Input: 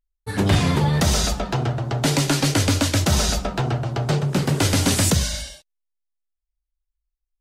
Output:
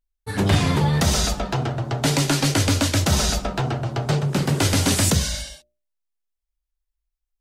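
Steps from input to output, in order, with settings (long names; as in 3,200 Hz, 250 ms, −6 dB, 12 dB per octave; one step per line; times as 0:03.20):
mains-hum notches 60/120/180/240/300/360/420/480/540/600 Hz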